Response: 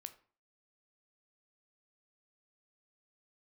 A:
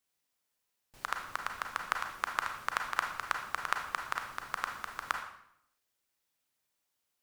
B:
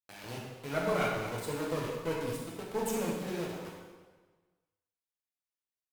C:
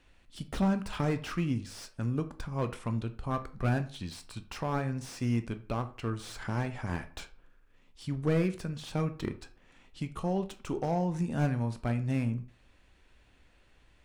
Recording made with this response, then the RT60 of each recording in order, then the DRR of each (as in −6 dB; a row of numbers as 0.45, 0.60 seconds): C; 0.70, 1.4, 0.45 seconds; 3.0, −4.0, 9.0 decibels